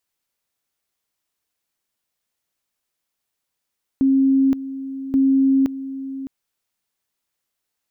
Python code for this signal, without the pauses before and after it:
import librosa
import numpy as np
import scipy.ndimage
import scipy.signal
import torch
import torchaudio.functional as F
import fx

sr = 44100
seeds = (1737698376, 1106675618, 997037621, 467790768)

y = fx.two_level_tone(sr, hz=269.0, level_db=-12.5, drop_db=14.0, high_s=0.52, low_s=0.61, rounds=2)